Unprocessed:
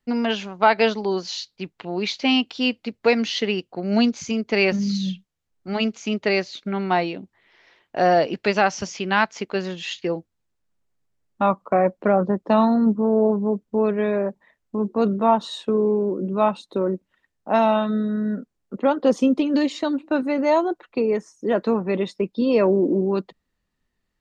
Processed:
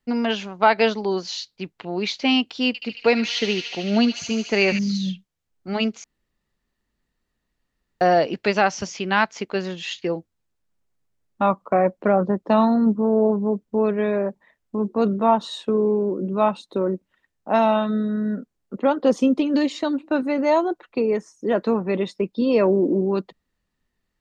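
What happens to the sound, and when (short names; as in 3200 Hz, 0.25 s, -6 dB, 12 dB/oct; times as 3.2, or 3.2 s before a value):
2.67–4.79 thin delay 74 ms, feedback 85%, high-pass 2100 Hz, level -7 dB
6.04–8.01 room tone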